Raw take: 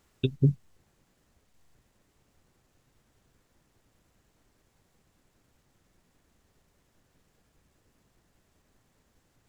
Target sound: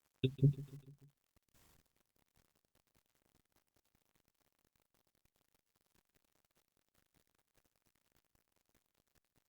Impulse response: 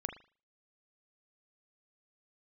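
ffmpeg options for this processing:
-af "acrusher=bits=9:mix=0:aa=0.000001,aecho=1:1:147|294|441|588:0.112|0.0595|0.0315|0.0167,volume=-8dB" -ar 48000 -c:a libopus -b:a 64k

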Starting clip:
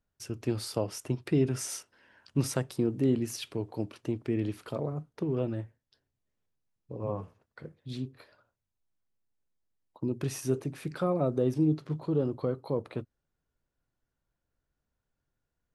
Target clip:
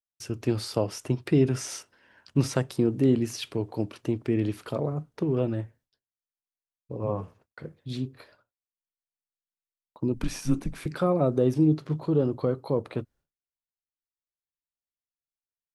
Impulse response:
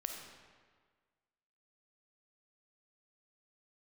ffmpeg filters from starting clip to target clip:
-filter_complex "[0:a]acrossover=split=6600[link_01][link_02];[link_02]acompressor=threshold=-49dB:ratio=4:attack=1:release=60[link_03];[link_01][link_03]amix=inputs=2:normalize=0,asettb=1/sr,asplit=3[link_04][link_05][link_06];[link_04]atrim=end=10.144[link_07];[link_05]atrim=start=10.14:end=10.86,asetpts=PTS-STARTPTS,afade=type=in:duration=0.004:curve=qsin,afade=type=out:start_time=0.716:duration=0.004:curve=qsin,afreqshift=-120[link_08];[link_06]atrim=start=10.856[link_09];[link_07][link_08]acrossfade=duration=0.004:curve1=hsin:curve2=qsin[link_10];[link_10][link_09]acrossfade=duration=0.004:curve1=qsin:curve2=hsin,agate=range=-33dB:threshold=-58dB:ratio=3:detection=peak,volume=4.5dB"

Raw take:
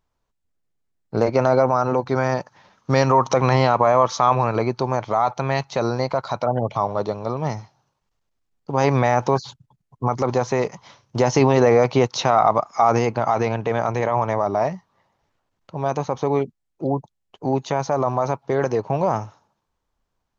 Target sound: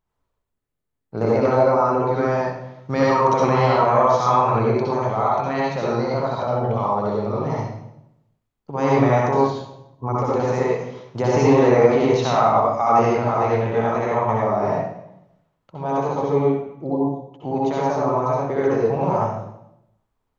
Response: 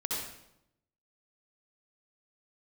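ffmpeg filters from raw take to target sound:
-filter_complex "[0:a]equalizer=frequency=5300:width=1.3:gain=-6.5[link_01];[1:a]atrim=start_sample=2205[link_02];[link_01][link_02]afir=irnorm=-1:irlink=0,volume=-4dB"

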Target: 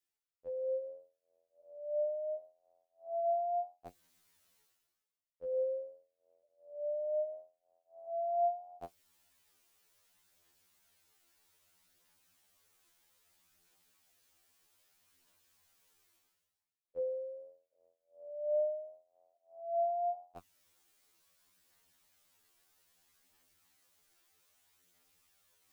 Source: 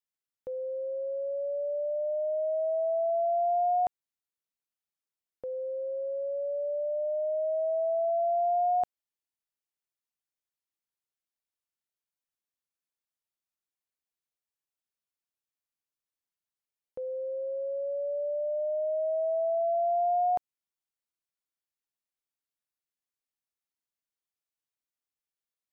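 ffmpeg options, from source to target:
ffmpeg -i in.wav -af "adynamicequalizer=threshold=0.00794:dfrequency=950:dqfactor=0.96:tfrequency=950:tqfactor=0.96:attack=5:release=100:ratio=0.375:range=3:mode=cutabove:tftype=bell,areverse,acompressor=mode=upward:threshold=-44dB:ratio=2.5,areverse,flanger=delay=8.6:depth=3.1:regen=40:speed=0.62:shape=triangular,afftfilt=real='re*2*eq(mod(b,4),0)':imag='im*2*eq(mod(b,4),0)':win_size=2048:overlap=0.75" out.wav

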